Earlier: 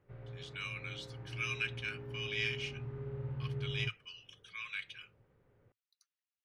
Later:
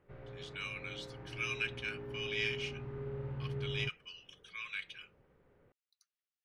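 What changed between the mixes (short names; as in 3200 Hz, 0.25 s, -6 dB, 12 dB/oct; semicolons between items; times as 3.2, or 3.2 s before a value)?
background +3.5 dB; master: add bell 110 Hz -11.5 dB 0.43 oct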